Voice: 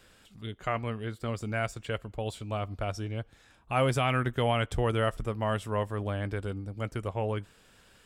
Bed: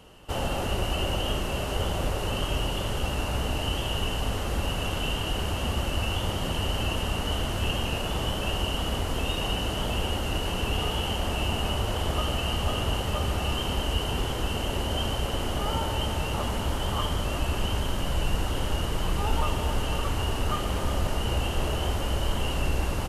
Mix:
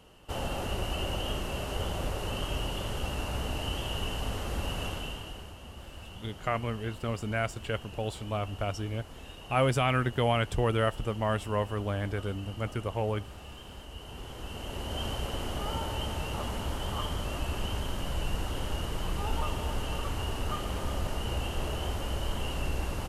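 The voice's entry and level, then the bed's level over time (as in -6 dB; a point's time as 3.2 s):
5.80 s, +0.5 dB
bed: 4.85 s -5 dB
5.57 s -18 dB
13.87 s -18 dB
15.06 s -5.5 dB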